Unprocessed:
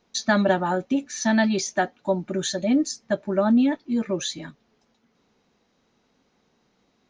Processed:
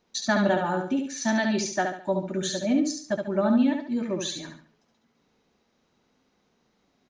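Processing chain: feedback delay 70 ms, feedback 35%, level -5 dB; trim -3.5 dB

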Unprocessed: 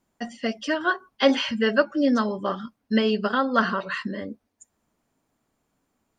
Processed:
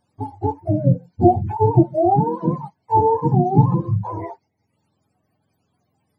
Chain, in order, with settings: spectrum inverted on a logarithmic axis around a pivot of 440 Hz; treble shelf 3.4 kHz +7.5 dB; band-stop 1.4 kHz, Q 20; trim +6.5 dB

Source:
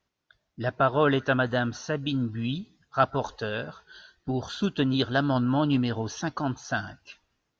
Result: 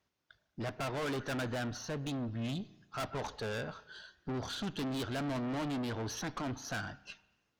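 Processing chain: 1.57–2.36 s: partial rectifier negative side -3 dB; high-pass 50 Hz 12 dB/octave; valve stage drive 34 dB, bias 0.5; spring tank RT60 1 s, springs 35 ms, chirp 50 ms, DRR 18 dB

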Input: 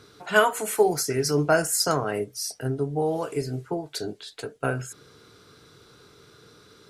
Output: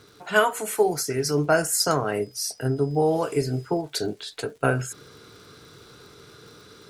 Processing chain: gain riding within 3 dB 2 s; 2.21–3.80 s: whistle 5 kHz -56 dBFS; crackle 130 per s -46 dBFS; trim +1.5 dB

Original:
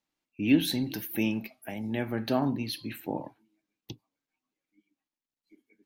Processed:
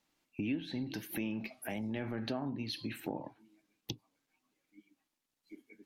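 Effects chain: low-pass that closes with the level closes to 2.9 kHz, closed at -23 dBFS; 1.12–2.28 s: transient shaper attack -5 dB, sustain +5 dB; compression 4:1, threshold -45 dBFS, peak gain reduction 23 dB; trim +7.5 dB

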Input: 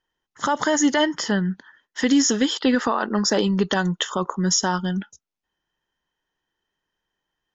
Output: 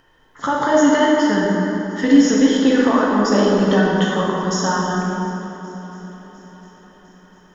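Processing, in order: treble shelf 3.3 kHz -11 dB; upward compressor, threshold -42 dBFS; shuffle delay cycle 703 ms, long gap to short 1.5:1, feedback 55%, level -21 dB; plate-style reverb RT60 3.3 s, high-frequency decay 0.55×, DRR -5 dB

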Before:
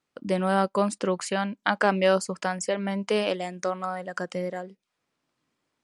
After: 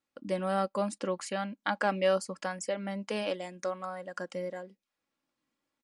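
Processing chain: comb 3.6 ms, depth 44%; trim -7.5 dB

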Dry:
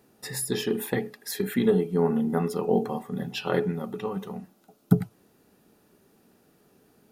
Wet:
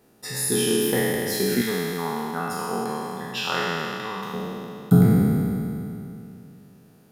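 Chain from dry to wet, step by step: spectral sustain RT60 2.84 s; 1.61–4.34 s: resonant low shelf 720 Hz -8 dB, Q 1.5

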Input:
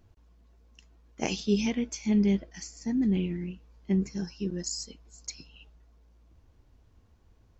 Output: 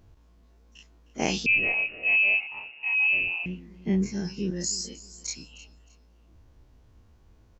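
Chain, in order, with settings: every event in the spectrogram widened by 60 ms; feedback delay 310 ms, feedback 29%, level -19 dB; 1.46–3.46 s: frequency inversion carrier 2.8 kHz

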